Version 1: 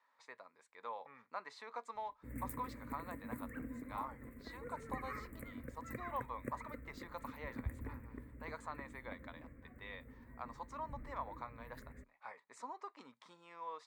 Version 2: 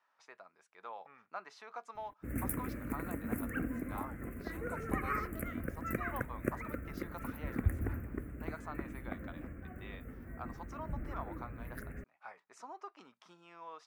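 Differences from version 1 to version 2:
background +10.5 dB; master: remove ripple EQ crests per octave 1, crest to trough 8 dB

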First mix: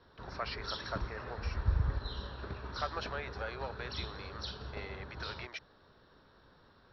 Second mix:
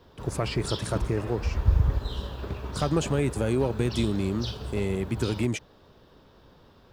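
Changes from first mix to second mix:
speech: remove HPF 570 Hz 24 dB/oct; master: remove rippled Chebyshev low-pass 5700 Hz, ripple 9 dB

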